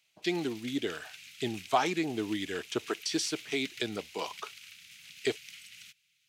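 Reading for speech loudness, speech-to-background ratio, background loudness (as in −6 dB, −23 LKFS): −33.5 LKFS, 13.5 dB, −47.0 LKFS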